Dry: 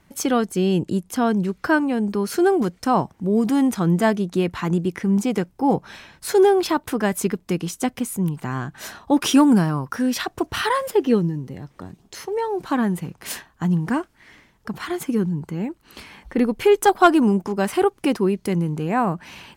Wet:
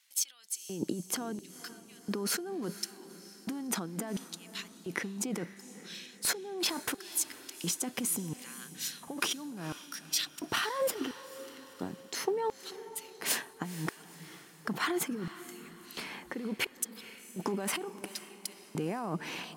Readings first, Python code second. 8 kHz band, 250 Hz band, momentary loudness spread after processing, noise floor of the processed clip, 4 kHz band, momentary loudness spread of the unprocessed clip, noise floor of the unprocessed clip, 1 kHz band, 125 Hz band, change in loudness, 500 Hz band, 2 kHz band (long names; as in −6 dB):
−1.0 dB, −19.0 dB, 13 LU, −55 dBFS, −4.5 dB, 14 LU, −59 dBFS, −17.5 dB, −19.0 dB, −14.5 dB, −17.5 dB, −10.0 dB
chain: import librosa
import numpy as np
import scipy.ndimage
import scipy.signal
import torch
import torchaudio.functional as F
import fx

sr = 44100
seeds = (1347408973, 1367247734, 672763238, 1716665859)

y = fx.over_compress(x, sr, threshold_db=-28.0, ratio=-1.0)
y = fx.filter_lfo_highpass(y, sr, shape='square', hz=0.72, low_hz=230.0, high_hz=3600.0, q=0.97)
y = fx.echo_diffused(y, sr, ms=476, feedback_pct=49, wet_db=-14.5)
y = y * librosa.db_to_amplitude(-6.5)